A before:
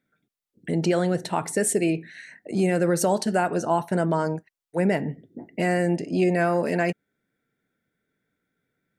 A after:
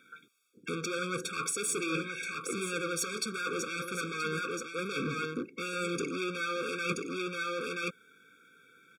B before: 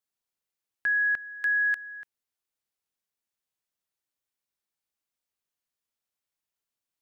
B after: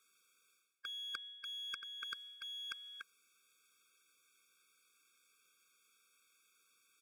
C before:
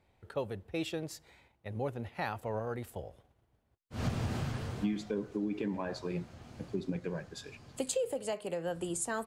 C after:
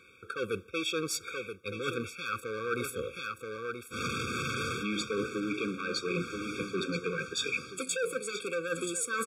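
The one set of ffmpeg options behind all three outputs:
ffmpeg -i in.wav -filter_complex "[0:a]equalizer=frequency=4600:width_type=o:width=0.97:gain=-6,apsyclip=18.5dB,aeval=exprs='(tanh(2.82*val(0)+0.45)-tanh(0.45))/2.82':channel_layout=same,asplit=2[link_01][link_02];[link_02]aeval=exprs='0.133*(abs(mod(val(0)/0.133+3,4)-2)-1)':channel_layout=same,volume=-3.5dB[link_03];[link_01][link_03]amix=inputs=2:normalize=0,bandpass=frequency=3300:width_type=q:width=0.53:csg=0,aecho=1:1:979:0.266,areverse,acompressor=threshold=-31dB:ratio=12,areverse,afftfilt=real='re*eq(mod(floor(b*sr/1024/540),2),0)':imag='im*eq(mod(floor(b*sr/1024/540),2),0)':win_size=1024:overlap=0.75,volume=4.5dB" out.wav

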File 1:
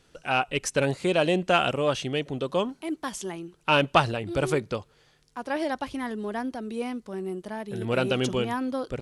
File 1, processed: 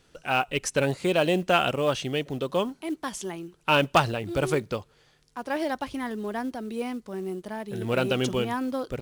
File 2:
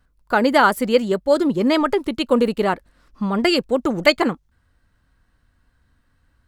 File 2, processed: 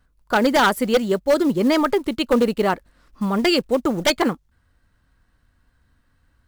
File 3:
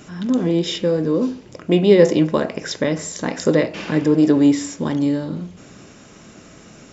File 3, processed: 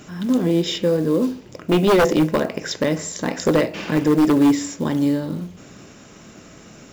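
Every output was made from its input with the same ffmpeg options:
ffmpeg -i in.wav -af "acrusher=bits=7:mode=log:mix=0:aa=0.000001,aeval=exprs='0.355*(abs(mod(val(0)/0.355+3,4)-2)-1)':channel_layout=same" out.wav

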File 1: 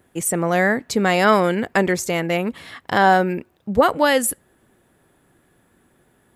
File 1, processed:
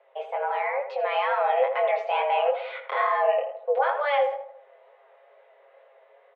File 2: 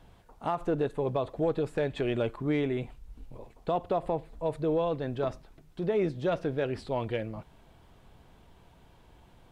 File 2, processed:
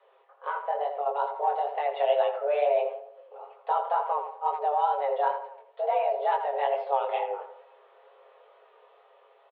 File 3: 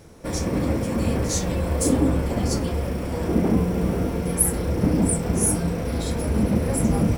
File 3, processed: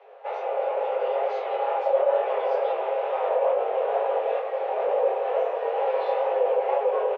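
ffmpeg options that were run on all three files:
ffmpeg -i in.wav -filter_complex "[0:a]aemphasis=mode=production:type=75fm,asplit=2[link_01][link_02];[link_02]acompressor=threshold=-24dB:ratio=6,volume=2.5dB[link_03];[link_01][link_03]amix=inputs=2:normalize=0,highpass=frequency=180:width_type=q:width=0.5412,highpass=frequency=180:width_type=q:width=1.307,lowpass=frequency=2900:width_type=q:width=0.5176,lowpass=frequency=2900:width_type=q:width=0.7071,lowpass=frequency=2900:width_type=q:width=1.932,afreqshift=290,tiltshelf=frequency=760:gain=7.5,alimiter=limit=-12.5dB:level=0:latency=1:release=22,aecho=1:1:7.4:0.67,asplit=2[link_04][link_05];[link_05]adelay=82,lowpass=frequency=1700:poles=1,volume=-7dB,asplit=2[link_06][link_07];[link_07]adelay=82,lowpass=frequency=1700:poles=1,volume=0.48,asplit=2[link_08][link_09];[link_09]adelay=82,lowpass=frequency=1700:poles=1,volume=0.48,asplit=2[link_10][link_11];[link_11]adelay=82,lowpass=frequency=1700:poles=1,volume=0.48,asplit=2[link_12][link_13];[link_13]adelay=82,lowpass=frequency=1700:poles=1,volume=0.48,asplit=2[link_14][link_15];[link_15]adelay=82,lowpass=frequency=1700:poles=1,volume=0.48[link_16];[link_06][link_08][link_10][link_12][link_14][link_16]amix=inputs=6:normalize=0[link_17];[link_04][link_17]amix=inputs=2:normalize=0,dynaudnorm=framelen=380:gausssize=7:maxgain=4dB,flanger=delay=19:depth=4.7:speed=2.2,volume=-5dB" out.wav

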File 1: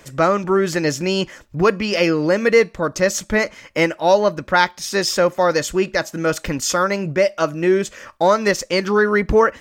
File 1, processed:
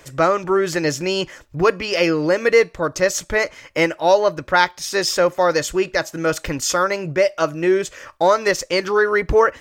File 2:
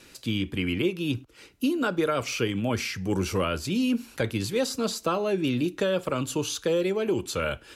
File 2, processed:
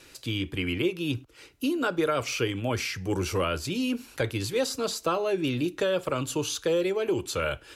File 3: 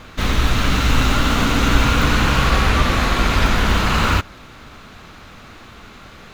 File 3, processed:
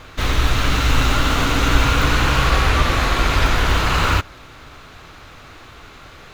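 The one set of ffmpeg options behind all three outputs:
ffmpeg -i in.wav -af "equalizer=frequency=210:width_type=o:width=0.3:gain=-13.5" out.wav

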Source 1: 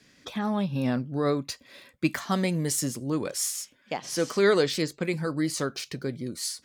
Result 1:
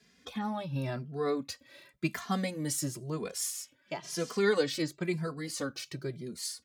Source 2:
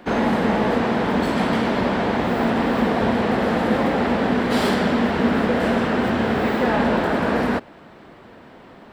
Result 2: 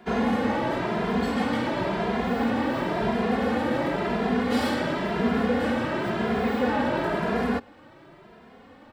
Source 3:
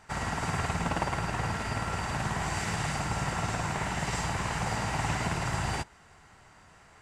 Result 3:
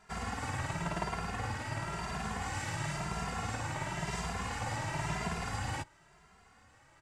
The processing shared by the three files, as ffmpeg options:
ffmpeg -i in.wav -filter_complex "[0:a]asplit=2[link_01][link_02];[link_02]adelay=2.5,afreqshift=0.96[link_03];[link_01][link_03]amix=inputs=2:normalize=1,volume=-2.5dB" out.wav

